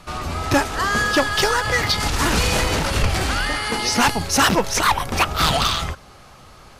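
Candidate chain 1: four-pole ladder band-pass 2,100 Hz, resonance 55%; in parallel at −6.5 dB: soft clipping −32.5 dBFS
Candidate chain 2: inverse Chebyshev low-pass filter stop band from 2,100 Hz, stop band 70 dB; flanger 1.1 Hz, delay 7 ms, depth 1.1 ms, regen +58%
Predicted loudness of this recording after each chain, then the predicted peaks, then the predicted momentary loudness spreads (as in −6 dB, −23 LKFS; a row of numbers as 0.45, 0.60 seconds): −28.5, −31.5 LKFS; −14.5, −14.0 dBFS; 6, 7 LU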